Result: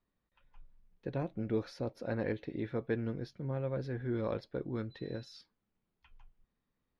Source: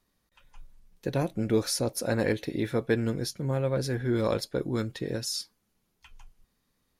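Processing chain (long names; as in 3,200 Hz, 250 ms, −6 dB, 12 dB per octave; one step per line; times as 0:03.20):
0:04.90–0:05.36: steady tone 4,000 Hz −43 dBFS
high-frequency loss of the air 300 metres
level −7.5 dB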